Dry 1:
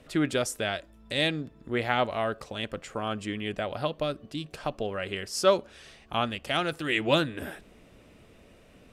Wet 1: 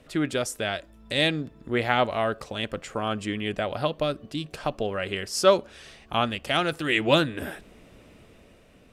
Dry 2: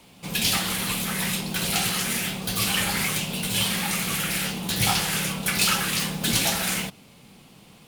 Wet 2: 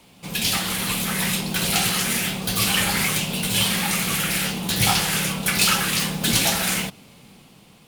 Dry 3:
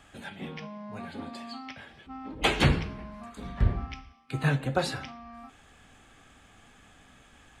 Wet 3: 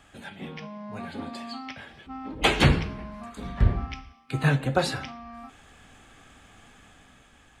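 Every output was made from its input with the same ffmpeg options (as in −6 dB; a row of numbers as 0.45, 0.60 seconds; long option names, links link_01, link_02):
-af "dynaudnorm=framelen=170:gausssize=9:maxgain=3.5dB"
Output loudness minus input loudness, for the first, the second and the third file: +3.0, +3.0, +3.5 LU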